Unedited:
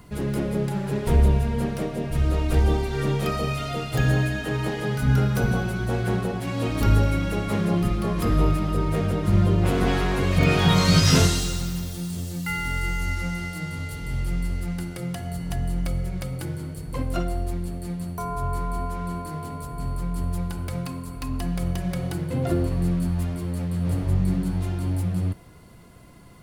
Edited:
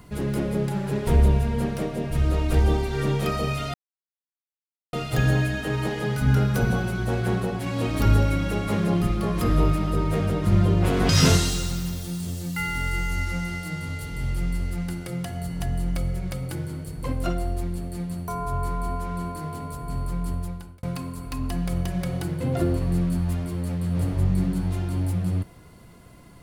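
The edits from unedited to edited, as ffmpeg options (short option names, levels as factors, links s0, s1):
-filter_complex "[0:a]asplit=4[s0][s1][s2][s3];[s0]atrim=end=3.74,asetpts=PTS-STARTPTS,afade=t=out:st=3.736:d=0.004:c=hsin,apad=pad_dur=1.19[s4];[s1]atrim=start=3.74:end=9.902,asetpts=PTS-STARTPTS,afade=t=in:d=0.004:c=hsin[s5];[s2]atrim=start=10.988:end=20.73,asetpts=PTS-STARTPTS,afade=t=out:st=9.162:d=0.58[s6];[s3]atrim=start=20.73,asetpts=PTS-STARTPTS,afade=t=in:d=0.004:c=hsin[s7];[s4][s5]concat=n=2:v=0:a=1[s8];[s6][s7]concat=n=2:v=0:a=1[s9];[s8][s9]acrossfade=d=0.004:c1=hsin:c2=hsin"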